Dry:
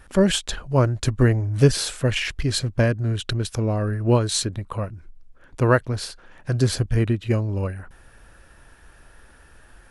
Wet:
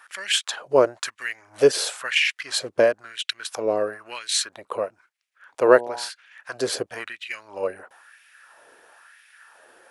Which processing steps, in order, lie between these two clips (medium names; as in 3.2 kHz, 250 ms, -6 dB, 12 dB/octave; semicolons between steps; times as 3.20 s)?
5.64–6.08 s: mains buzz 120 Hz, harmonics 8, -32 dBFS -4 dB/octave; LFO high-pass sine 1 Hz 430–2300 Hz